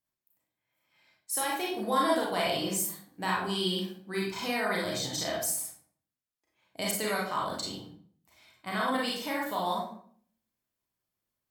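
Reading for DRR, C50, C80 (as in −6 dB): −4.0 dB, 2.0 dB, 7.0 dB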